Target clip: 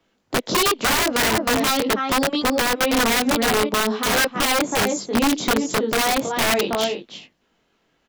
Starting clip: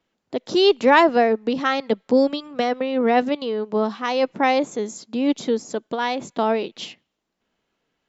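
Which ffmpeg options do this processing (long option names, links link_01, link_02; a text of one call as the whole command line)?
ffmpeg -i in.wav -filter_complex "[0:a]flanger=delay=19.5:depth=4.1:speed=0.43,asettb=1/sr,asplit=3[link_01][link_02][link_03];[link_01]atrim=end=4.904[link_04];[link_02]atrim=start=4.9:end=6.68,asetpts=PTS-STARTPTS,afade=type=in:duration=0.004:curve=qsin,afade=type=out:start_time=1.776:duration=0.004:curve=qsin,bandreject=frequency=50:width_type=h:width=6,bandreject=frequency=100:width_type=h:width=6,bandreject=frequency=150:width_type=h:width=6,bandreject=frequency=200:width_type=h:width=6,bandreject=frequency=250:width_type=h:width=6,bandreject=frequency=300:width_type=h:width=6,bandreject=frequency=350:width_type=h:width=6,bandreject=frequency=400:width_type=h:width=6,bandreject=frequency=450:width_type=h:width=6,bandreject=frequency=500:width_type=h:width=6[link_05];[link_03]atrim=start=6.676[link_06];[link_04][link_05]acrossfade=duration=0.004:curve1=hsin:curve2=qsin[link_07];[link_07][link_06]acrossfade=duration=0.004:curve1=qsin:curve2=hsin,asplit=2[link_08][link_09];[link_09]adelay=320.7,volume=-9dB,highshelf=frequency=4000:gain=-7.22[link_10];[link_08][link_10]amix=inputs=2:normalize=0,asplit=2[link_11][link_12];[link_12]asoftclip=type=tanh:threshold=-20dB,volume=-3.5dB[link_13];[link_11][link_13]amix=inputs=2:normalize=0,acompressor=threshold=-21dB:ratio=8,acrossover=split=190|3700[link_14][link_15][link_16];[link_15]aeval=exprs='(mod(10*val(0)+1,2)-1)/10':channel_layout=same[link_17];[link_14][link_17][link_16]amix=inputs=3:normalize=0,volume=6.5dB" out.wav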